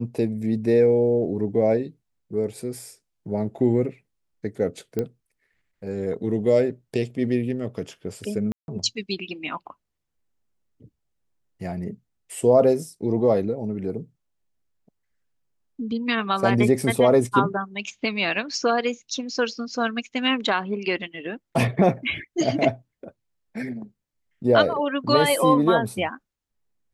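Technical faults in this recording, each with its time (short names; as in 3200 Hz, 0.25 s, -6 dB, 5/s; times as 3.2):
4.99 pop -14 dBFS
8.52–8.68 gap 0.161 s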